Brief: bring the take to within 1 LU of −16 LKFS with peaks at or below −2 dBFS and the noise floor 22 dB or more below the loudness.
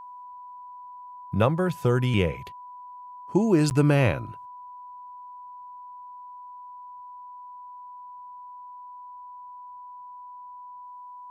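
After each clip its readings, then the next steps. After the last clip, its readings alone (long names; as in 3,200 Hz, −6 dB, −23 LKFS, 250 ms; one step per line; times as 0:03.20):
number of dropouts 1; longest dropout 9.8 ms; interfering tone 990 Hz; level of the tone −40 dBFS; integrated loudness −23.5 LKFS; sample peak −7.5 dBFS; target loudness −16.0 LKFS
→ repair the gap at 0:03.70, 9.8 ms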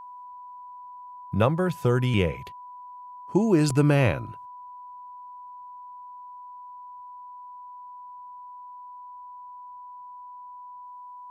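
number of dropouts 0; interfering tone 990 Hz; level of the tone −40 dBFS
→ notch filter 990 Hz, Q 30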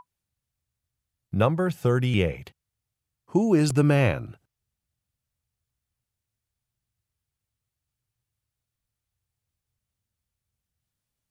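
interfering tone none found; integrated loudness −23.5 LKFS; sample peak −8.0 dBFS; target loudness −16.0 LKFS
→ level +7.5 dB
brickwall limiter −2 dBFS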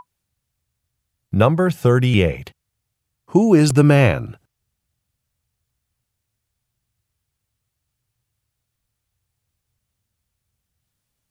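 integrated loudness −16.0 LKFS; sample peak −2.0 dBFS; background noise floor −79 dBFS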